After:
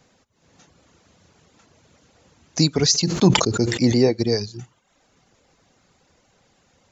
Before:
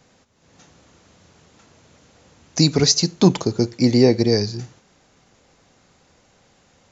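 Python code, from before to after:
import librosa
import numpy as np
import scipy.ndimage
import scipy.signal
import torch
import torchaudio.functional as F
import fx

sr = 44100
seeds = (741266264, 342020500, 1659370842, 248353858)

y = fx.dereverb_blind(x, sr, rt60_s=0.64)
y = fx.sustainer(y, sr, db_per_s=60.0, at=(2.79, 3.95))
y = y * 10.0 ** (-2.0 / 20.0)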